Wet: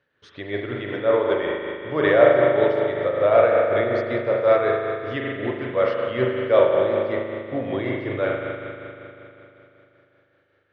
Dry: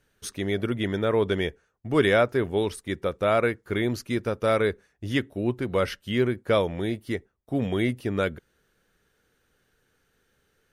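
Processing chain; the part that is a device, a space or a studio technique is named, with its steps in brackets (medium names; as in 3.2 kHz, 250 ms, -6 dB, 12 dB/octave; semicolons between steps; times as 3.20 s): combo amplifier with spring reverb and tremolo (spring tank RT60 3.3 s, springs 39 ms, chirp 65 ms, DRR -2 dB; tremolo 5.3 Hz, depth 40%; cabinet simulation 110–4100 Hz, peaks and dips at 130 Hz +3 dB, 200 Hz -9 dB, 570 Hz +7 dB, 1.1 kHz +5 dB, 1.8 kHz +6 dB); dynamic bell 680 Hz, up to +6 dB, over -29 dBFS, Q 1.2; trim -3 dB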